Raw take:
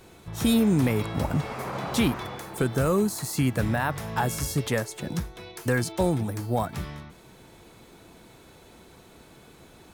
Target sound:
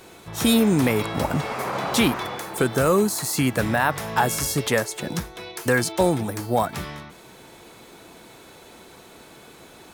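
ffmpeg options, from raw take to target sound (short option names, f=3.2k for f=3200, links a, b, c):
-af "lowshelf=f=180:g=-11.5,volume=7dB"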